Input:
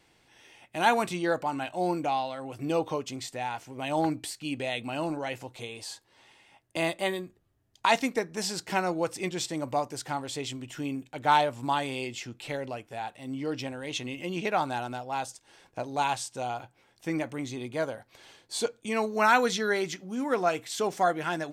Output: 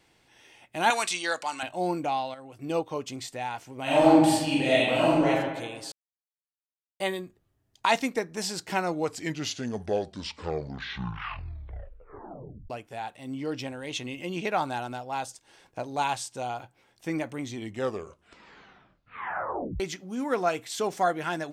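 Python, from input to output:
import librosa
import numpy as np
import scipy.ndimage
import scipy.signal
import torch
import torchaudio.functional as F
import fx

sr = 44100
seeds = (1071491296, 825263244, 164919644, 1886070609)

y = fx.weighting(x, sr, curve='ITU-R 468', at=(0.9, 1.63))
y = fx.upward_expand(y, sr, threshold_db=-38.0, expansion=1.5, at=(2.34, 2.96))
y = fx.reverb_throw(y, sr, start_s=3.82, length_s=1.48, rt60_s=1.3, drr_db=-8.5)
y = fx.edit(y, sr, fx.silence(start_s=5.92, length_s=1.08),
    fx.tape_stop(start_s=8.79, length_s=3.91),
    fx.tape_stop(start_s=17.41, length_s=2.39), tone=tone)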